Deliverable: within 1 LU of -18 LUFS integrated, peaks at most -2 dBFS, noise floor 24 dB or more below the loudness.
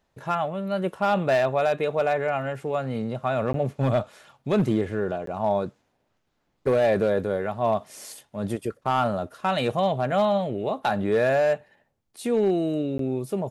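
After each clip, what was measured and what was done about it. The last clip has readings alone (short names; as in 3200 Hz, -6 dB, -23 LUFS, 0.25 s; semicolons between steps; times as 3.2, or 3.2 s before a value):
clipped 0.8%; flat tops at -15.0 dBFS; dropouts 3; longest dropout 13 ms; loudness -25.0 LUFS; peak -15.0 dBFS; loudness target -18.0 LUFS
-> clip repair -15 dBFS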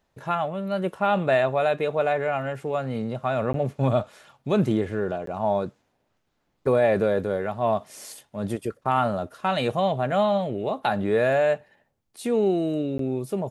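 clipped 0.0%; dropouts 3; longest dropout 13 ms
-> interpolate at 3.53/5.26/12.98, 13 ms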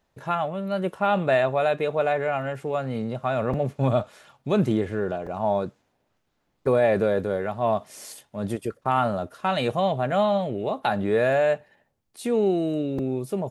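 dropouts 0; loudness -25.0 LUFS; peak -10.0 dBFS; loudness target -18.0 LUFS
-> gain +7 dB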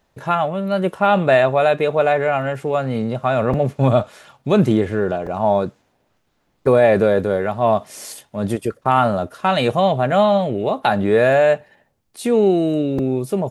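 loudness -18.0 LUFS; peak -3.0 dBFS; noise floor -66 dBFS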